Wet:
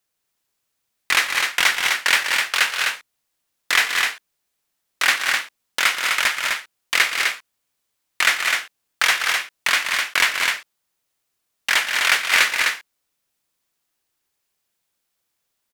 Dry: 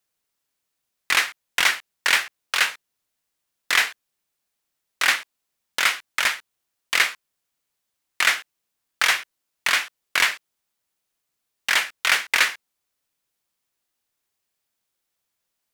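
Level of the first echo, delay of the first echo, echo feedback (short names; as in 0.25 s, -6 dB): -16.5 dB, 0.117 s, no steady repeat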